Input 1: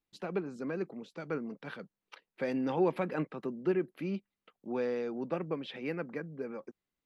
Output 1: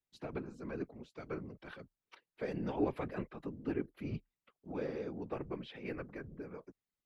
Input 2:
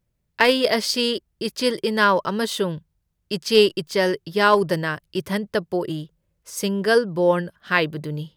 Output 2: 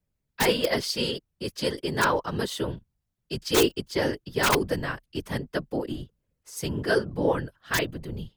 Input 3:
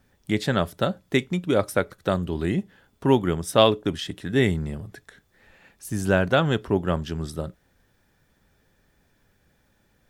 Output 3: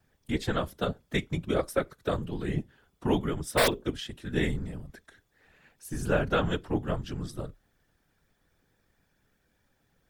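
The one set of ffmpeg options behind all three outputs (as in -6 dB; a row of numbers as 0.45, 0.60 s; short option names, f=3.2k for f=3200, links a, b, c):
-af "aeval=exprs='(mod(1.88*val(0)+1,2)-1)/1.88':c=same,afftfilt=real='hypot(re,im)*cos(2*PI*random(0))':imag='hypot(re,im)*sin(2*PI*random(1))':win_size=512:overlap=0.75,afreqshift=-33"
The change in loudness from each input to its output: -6.0, -6.0, -6.5 LU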